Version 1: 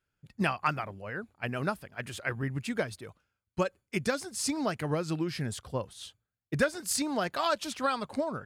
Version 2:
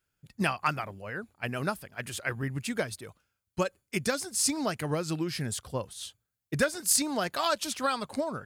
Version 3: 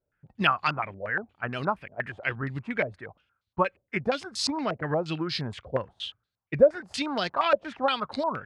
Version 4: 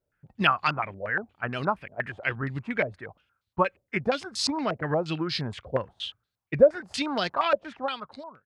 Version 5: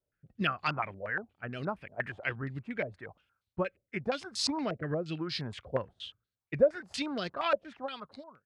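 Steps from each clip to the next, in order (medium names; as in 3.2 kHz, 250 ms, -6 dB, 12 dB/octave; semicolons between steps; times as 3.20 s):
treble shelf 5.3 kHz +9.5 dB
step-sequenced low-pass 8.5 Hz 590–4000 Hz
fade out at the end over 1.19 s; trim +1 dB
rotary cabinet horn 0.85 Hz, later 6 Hz, at 7.12 s; trim -3.5 dB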